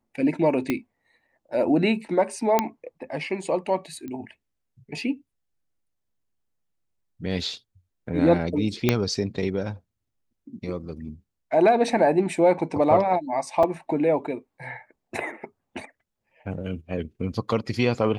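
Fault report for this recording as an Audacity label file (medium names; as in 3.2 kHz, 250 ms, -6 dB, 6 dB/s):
0.700000	0.700000	pop -11 dBFS
2.590000	2.590000	pop -6 dBFS
4.080000	4.080000	pop -24 dBFS
8.890000	8.890000	pop -5 dBFS
13.630000	13.630000	dropout 4.4 ms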